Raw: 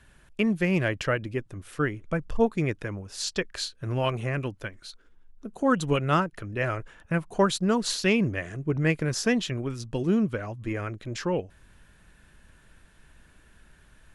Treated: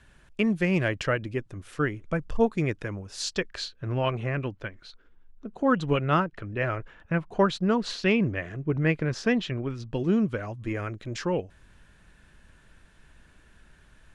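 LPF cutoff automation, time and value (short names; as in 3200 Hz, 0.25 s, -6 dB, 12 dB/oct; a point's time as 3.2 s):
3.34 s 8700 Hz
3.78 s 3700 Hz
9.81 s 3700 Hz
10.39 s 8700 Hz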